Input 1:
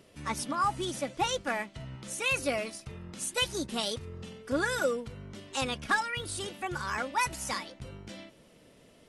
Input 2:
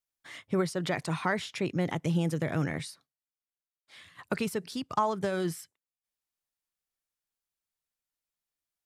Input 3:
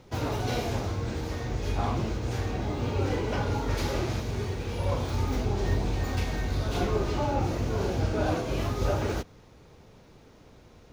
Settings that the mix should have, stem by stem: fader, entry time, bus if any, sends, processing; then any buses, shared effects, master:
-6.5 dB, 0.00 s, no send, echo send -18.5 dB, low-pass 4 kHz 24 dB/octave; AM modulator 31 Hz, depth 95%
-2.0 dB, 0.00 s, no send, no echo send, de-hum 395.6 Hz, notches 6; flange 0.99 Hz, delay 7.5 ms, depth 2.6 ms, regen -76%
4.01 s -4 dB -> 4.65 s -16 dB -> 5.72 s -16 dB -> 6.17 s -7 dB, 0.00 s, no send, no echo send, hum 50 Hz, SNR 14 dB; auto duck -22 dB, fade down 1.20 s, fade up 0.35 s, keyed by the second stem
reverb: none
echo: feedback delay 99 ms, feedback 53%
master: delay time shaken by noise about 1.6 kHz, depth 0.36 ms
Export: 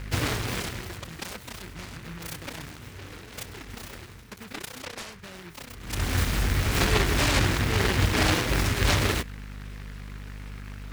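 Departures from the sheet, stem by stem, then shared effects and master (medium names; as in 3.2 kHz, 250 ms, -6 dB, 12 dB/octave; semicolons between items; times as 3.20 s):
stem 2 -2.0 dB -> -9.0 dB; stem 3 -4.0 dB -> +7.0 dB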